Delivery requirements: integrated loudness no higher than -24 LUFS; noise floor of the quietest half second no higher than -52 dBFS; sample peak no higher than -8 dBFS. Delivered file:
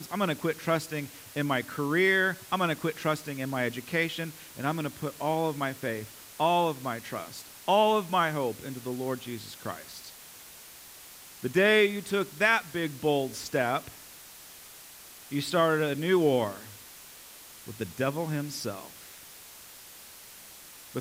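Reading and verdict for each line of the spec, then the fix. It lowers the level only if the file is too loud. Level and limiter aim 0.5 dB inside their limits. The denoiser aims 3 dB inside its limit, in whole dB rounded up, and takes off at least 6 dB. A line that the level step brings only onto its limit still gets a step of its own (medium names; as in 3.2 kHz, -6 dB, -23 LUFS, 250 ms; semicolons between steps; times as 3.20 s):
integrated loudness -28.5 LUFS: pass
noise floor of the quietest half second -49 dBFS: fail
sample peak -11.0 dBFS: pass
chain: noise reduction 6 dB, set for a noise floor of -49 dBFS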